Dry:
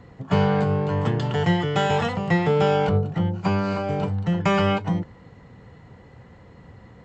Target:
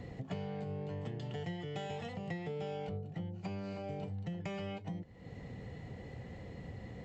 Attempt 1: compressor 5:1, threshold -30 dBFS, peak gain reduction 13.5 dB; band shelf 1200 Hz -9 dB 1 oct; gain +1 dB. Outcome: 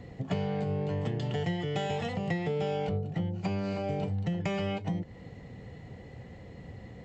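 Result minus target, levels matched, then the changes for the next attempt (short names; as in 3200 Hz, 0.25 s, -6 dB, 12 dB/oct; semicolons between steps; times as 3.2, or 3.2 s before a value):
compressor: peak gain reduction -9 dB
change: compressor 5:1, threshold -41.5 dBFS, peak gain reduction 23 dB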